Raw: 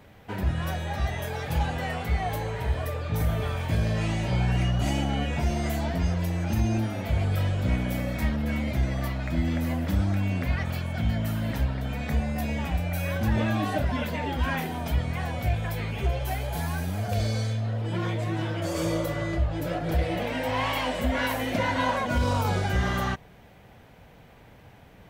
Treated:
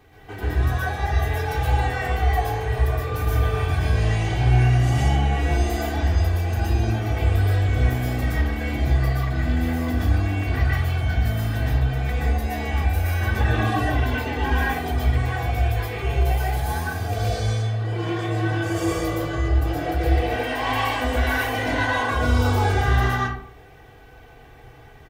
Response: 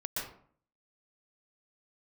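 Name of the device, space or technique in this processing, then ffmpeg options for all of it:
microphone above a desk: -filter_complex "[0:a]aecho=1:1:2.6:0.75[s0];[1:a]atrim=start_sample=2205[s1];[s0][s1]afir=irnorm=-1:irlink=0"

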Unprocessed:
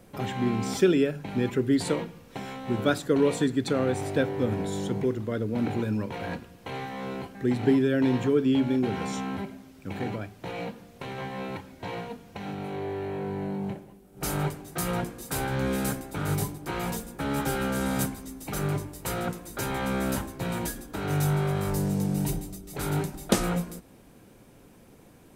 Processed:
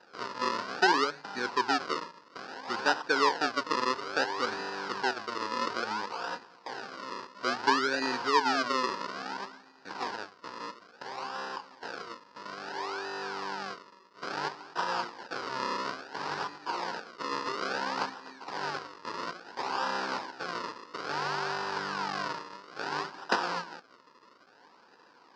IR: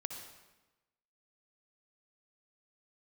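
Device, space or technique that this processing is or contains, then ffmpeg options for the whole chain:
circuit-bent sampling toy: -af "acrusher=samples=39:mix=1:aa=0.000001:lfo=1:lforange=39:lforate=0.59,highpass=560,equalizer=f=620:t=q:w=4:g=-6,equalizer=f=960:t=q:w=4:g=8,equalizer=f=1500:t=q:w=4:g=6,equalizer=f=2200:t=q:w=4:g=-5,equalizer=f=3400:t=q:w=4:g=-5,equalizer=f=4900:t=q:w=4:g=8,lowpass=f=5200:w=0.5412,lowpass=f=5200:w=1.3066"

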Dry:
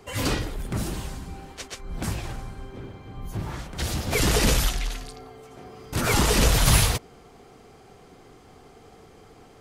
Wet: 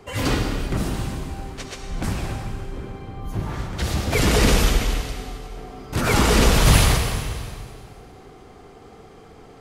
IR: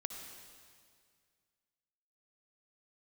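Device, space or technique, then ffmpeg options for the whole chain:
swimming-pool hall: -filter_complex "[1:a]atrim=start_sample=2205[s0];[0:a][s0]afir=irnorm=-1:irlink=0,highshelf=f=4600:g=-6,volume=2"

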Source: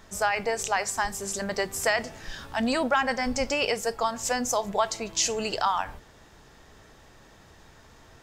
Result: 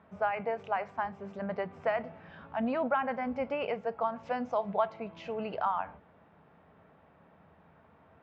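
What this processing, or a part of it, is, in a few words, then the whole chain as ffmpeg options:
bass cabinet: -filter_complex "[0:a]asettb=1/sr,asplit=3[s0][s1][s2];[s0]atrim=end=4.234[s3];[s1]atrim=start=4.23:end=4.86,asetpts=PTS-STARTPTS,afade=t=in:d=0.004:c=qsin,afade=t=out:st=0.626:d=0.004:c=qsin,equalizer=f=4500:t=o:w=1.2:g=6.5[s4];[s2]atrim=start=4.856[s5];[s3][s4]acrossfade=d=0.004:c1=hsin:c2=qsin[s6];[s6][s5]acrossfade=d=0.004:c1=qsin:c2=hsin,highpass=f=84:w=0.5412,highpass=f=84:w=1.3066,equalizer=f=120:t=q:w=4:g=-9,equalizer=f=170:t=q:w=4:g=7,equalizer=f=350:t=q:w=4:g=-6,equalizer=f=650:t=q:w=4:g=3,equalizer=f=1800:t=q:w=4:g=-8,lowpass=f=2200:w=0.5412,lowpass=f=2200:w=1.3066,volume=0.562"

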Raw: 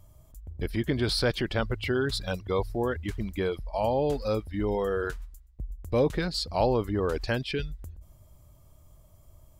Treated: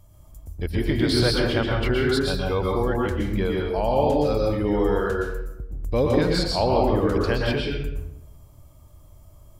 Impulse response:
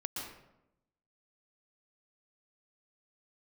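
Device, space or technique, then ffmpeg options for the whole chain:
bathroom: -filter_complex "[1:a]atrim=start_sample=2205[s0];[0:a][s0]afir=irnorm=-1:irlink=0,volume=1.68"

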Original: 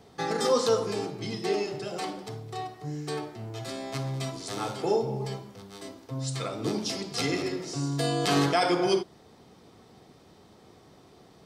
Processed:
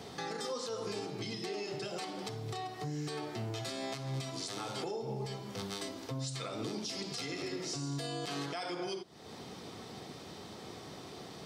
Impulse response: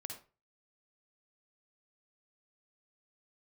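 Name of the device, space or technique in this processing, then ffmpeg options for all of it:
broadcast voice chain: -af "highpass=79,deesser=0.55,acompressor=threshold=0.00794:ratio=3,equalizer=f=4100:t=o:w=2.4:g=5,alimiter=level_in=3.76:limit=0.0631:level=0:latency=1:release=237,volume=0.266,volume=2.11"

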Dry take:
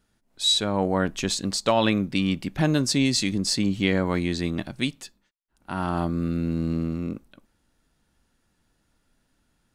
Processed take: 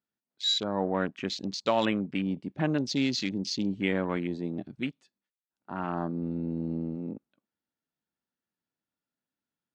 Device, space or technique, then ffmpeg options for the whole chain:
over-cleaned archive recording: -af "highpass=160,lowpass=5600,afwtdn=0.0224,volume=0.596"

